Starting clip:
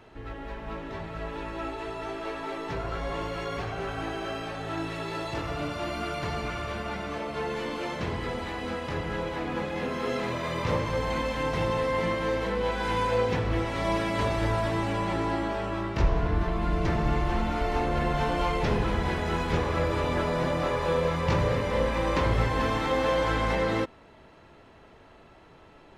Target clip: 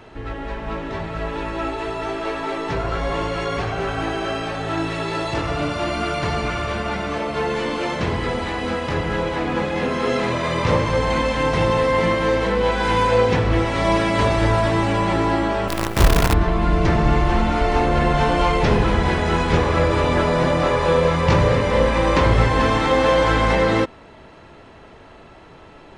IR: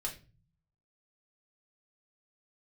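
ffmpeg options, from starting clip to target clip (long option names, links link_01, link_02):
-filter_complex "[0:a]aresample=22050,aresample=44100,asettb=1/sr,asplit=3[link_01][link_02][link_03];[link_01]atrim=end=15.684[link_04];[link_02]atrim=start=15.68:end=16.34,asetpts=PTS-STARTPTS,afade=type=in:duration=0.004:curve=qsin,afade=type=out:start_time=0.656:duration=0.004:curve=qsin,acrusher=bits=5:dc=4:mix=0:aa=0.000001[link_05];[link_03]atrim=start=16.336[link_06];[link_04][link_05]acrossfade=duration=0.004:curve1=hsin:curve2=qsin[link_07];[link_07][link_06]acrossfade=duration=0.004:curve1=qsin:curve2=hsin,volume=9dB"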